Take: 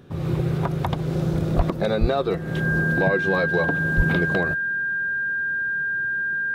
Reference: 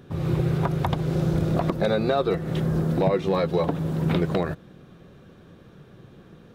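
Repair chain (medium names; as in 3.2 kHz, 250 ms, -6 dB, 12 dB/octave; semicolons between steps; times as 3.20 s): band-stop 1.6 kHz, Q 30; de-plosive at 1.56/2.00/3.96 s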